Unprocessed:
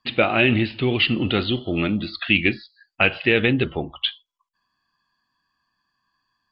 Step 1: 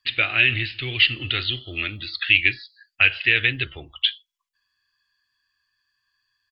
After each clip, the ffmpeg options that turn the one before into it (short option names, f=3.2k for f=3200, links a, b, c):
-af "firequalizer=gain_entry='entry(120,0);entry(180,-22);entry(300,-9);entry(530,-11);entry(900,-11);entry(1700,7)':delay=0.05:min_phase=1,volume=-4dB"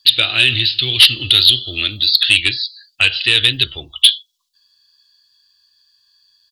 -af "highshelf=f=2.9k:t=q:w=3:g=10,aeval=exprs='1.78*sin(PI/2*2.24*val(0)/1.78)':c=same,volume=-6.5dB"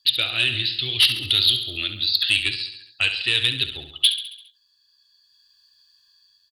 -filter_complex "[0:a]dynaudnorm=f=430:g=5:m=8.5dB,asplit=2[a][b];[b]aecho=0:1:68|136|204|272|340|408:0.299|0.167|0.0936|0.0524|0.0294|0.0164[c];[a][c]amix=inputs=2:normalize=0,volume=-8.5dB"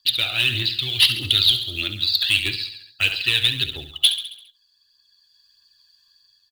-filter_complex "[0:a]acrossover=split=3900[a][b];[a]acrusher=bits=4:mode=log:mix=0:aa=0.000001[c];[c][b]amix=inputs=2:normalize=0,aphaser=in_gain=1:out_gain=1:delay=1.5:decay=0.41:speed=1.6:type=triangular"